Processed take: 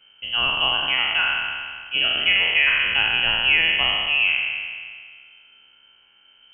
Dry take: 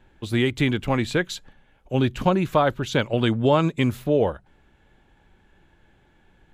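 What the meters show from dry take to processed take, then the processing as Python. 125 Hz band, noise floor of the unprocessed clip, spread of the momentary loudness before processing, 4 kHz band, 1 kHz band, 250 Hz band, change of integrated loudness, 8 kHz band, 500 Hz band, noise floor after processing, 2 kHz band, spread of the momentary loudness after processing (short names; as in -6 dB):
-19.5 dB, -60 dBFS, 7 LU, +15.5 dB, -2.5 dB, -20.5 dB, +4.5 dB, under -35 dB, -15.0 dB, -56 dBFS, +13.0 dB, 11 LU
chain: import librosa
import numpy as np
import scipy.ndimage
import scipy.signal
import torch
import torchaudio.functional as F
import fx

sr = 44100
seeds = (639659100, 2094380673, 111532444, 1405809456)

y = fx.spec_trails(x, sr, decay_s=1.97)
y = fx.freq_invert(y, sr, carrier_hz=3100)
y = y * 10.0 ** (-2.5 / 20.0)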